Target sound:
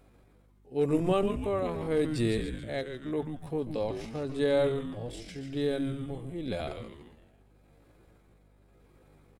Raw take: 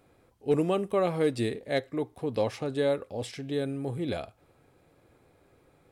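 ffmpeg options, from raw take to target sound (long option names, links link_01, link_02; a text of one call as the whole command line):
ffmpeg -i in.wav -filter_complex "[0:a]tremolo=f=1.4:d=0.55,asplit=2[link_01][link_02];[link_02]asplit=6[link_03][link_04][link_05][link_06][link_07][link_08];[link_03]adelay=89,afreqshift=-150,volume=-7dB[link_09];[link_04]adelay=178,afreqshift=-300,volume=-13.2dB[link_10];[link_05]adelay=267,afreqshift=-450,volume=-19.4dB[link_11];[link_06]adelay=356,afreqshift=-600,volume=-25.6dB[link_12];[link_07]adelay=445,afreqshift=-750,volume=-31.8dB[link_13];[link_08]adelay=534,afreqshift=-900,volume=-38dB[link_14];[link_09][link_10][link_11][link_12][link_13][link_14]amix=inputs=6:normalize=0[link_15];[link_01][link_15]amix=inputs=2:normalize=0,atempo=0.63,aeval=exprs='val(0)+0.000891*(sin(2*PI*50*n/s)+sin(2*PI*2*50*n/s)/2+sin(2*PI*3*50*n/s)/3+sin(2*PI*4*50*n/s)/4+sin(2*PI*5*50*n/s)/5)':channel_layout=same" out.wav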